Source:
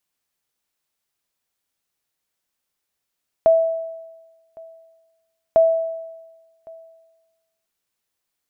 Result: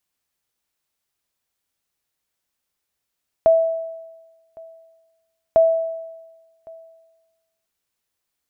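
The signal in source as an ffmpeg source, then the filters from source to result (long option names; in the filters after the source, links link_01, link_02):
-f lavfi -i "aevalsrc='0.398*(sin(2*PI*655*mod(t,2.1))*exp(-6.91*mod(t,2.1)/1.21)+0.0473*sin(2*PI*655*max(mod(t,2.1)-1.11,0))*exp(-6.91*max(mod(t,2.1)-1.11,0)/1.21))':duration=4.2:sample_rate=44100"
-af "equalizer=frequency=61:width=0.98:gain=4.5"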